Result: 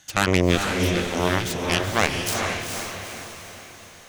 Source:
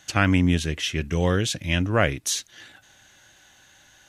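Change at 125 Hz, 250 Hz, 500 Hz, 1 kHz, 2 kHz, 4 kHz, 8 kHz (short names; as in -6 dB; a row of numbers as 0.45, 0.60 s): -2.5, -1.0, +3.0, +4.5, +2.5, +2.5, +0.5 dB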